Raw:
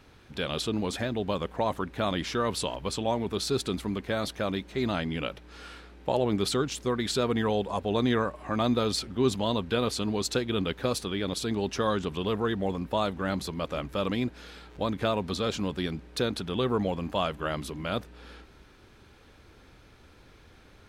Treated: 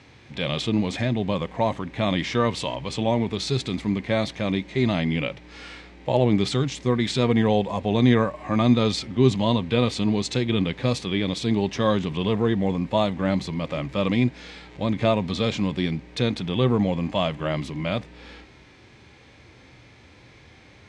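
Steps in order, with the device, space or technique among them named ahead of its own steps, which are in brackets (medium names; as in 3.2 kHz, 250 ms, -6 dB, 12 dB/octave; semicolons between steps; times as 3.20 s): harmonic-percussive split harmonic +9 dB; car door speaker (cabinet simulation 88–7900 Hz, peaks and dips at 130 Hz +5 dB, 420 Hz -4 dB, 1.4 kHz -8 dB, 2.1 kHz +7 dB)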